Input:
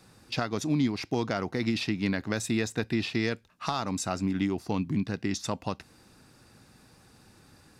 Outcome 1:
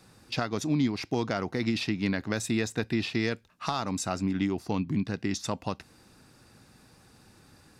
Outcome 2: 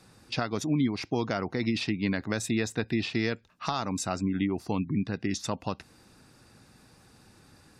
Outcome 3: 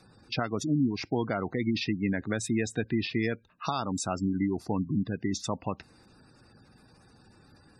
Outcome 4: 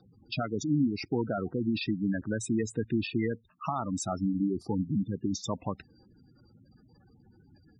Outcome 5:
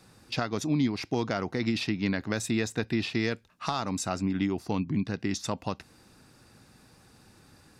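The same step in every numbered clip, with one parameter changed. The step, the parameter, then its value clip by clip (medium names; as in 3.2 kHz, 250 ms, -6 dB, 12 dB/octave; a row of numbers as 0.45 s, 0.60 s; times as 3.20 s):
spectral gate, under each frame's peak: -60 dB, -35 dB, -20 dB, -10 dB, -50 dB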